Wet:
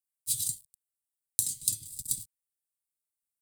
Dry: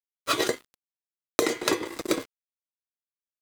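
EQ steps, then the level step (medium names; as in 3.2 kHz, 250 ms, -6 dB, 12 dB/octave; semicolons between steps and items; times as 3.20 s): inverse Chebyshev band-stop 450–1500 Hz, stop band 70 dB; resonant high shelf 7.2 kHz +6 dB, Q 3; 0.0 dB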